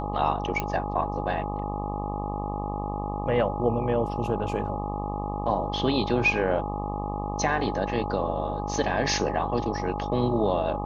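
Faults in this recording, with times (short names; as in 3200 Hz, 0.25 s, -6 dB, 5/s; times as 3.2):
buzz 50 Hz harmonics 25 -32 dBFS
tone 830 Hz -33 dBFS
0.6 pop -13 dBFS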